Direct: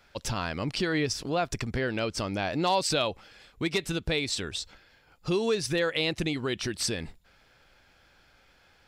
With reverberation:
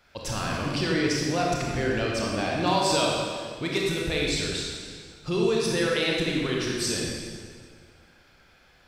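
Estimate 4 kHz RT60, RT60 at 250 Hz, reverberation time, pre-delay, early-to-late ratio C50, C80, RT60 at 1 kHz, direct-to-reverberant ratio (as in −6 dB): 1.7 s, 2.0 s, 1.9 s, 24 ms, −1.0 dB, 1.0 dB, 1.8 s, −3.0 dB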